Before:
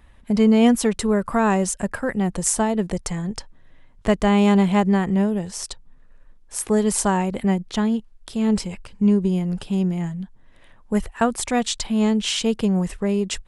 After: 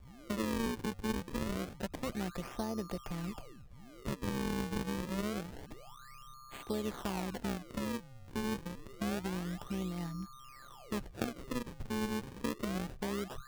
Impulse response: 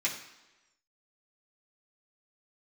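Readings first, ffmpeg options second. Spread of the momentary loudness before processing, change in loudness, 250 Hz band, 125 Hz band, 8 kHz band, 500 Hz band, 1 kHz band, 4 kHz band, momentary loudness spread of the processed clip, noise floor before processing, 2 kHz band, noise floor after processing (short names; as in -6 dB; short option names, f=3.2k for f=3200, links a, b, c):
13 LU, -17.5 dB, -18.0 dB, -16.0 dB, -21.5 dB, -17.5 dB, -16.5 dB, -16.0 dB, 14 LU, -50 dBFS, -13.5 dB, -54 dBFS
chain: -filter_complex "[0:a]acrossover=split=450|1500[a][b][c];[a]acompressor=threshold=-28dB:ratio=4[d];[b]acompressor=threshold=-32dB:ratio=4[e];[c]acompressor=threshold=-40dB:ratio=4[f];[d][e][f]amix=inputs=3:normalize=0,aeval=exprs='val(0)+0.00794*sin(2*PI*1200*n/s)':c=same,acrusher=samples=38:mix=1:aa=0.000001:lfo=1:lforange=60.8:lforate=0.27,tremolo=f=130:d=0.571,volume=-7dB"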